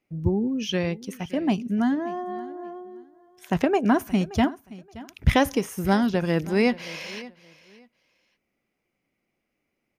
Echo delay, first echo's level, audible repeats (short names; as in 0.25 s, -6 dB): 0.574 s, -19.0 dB, 2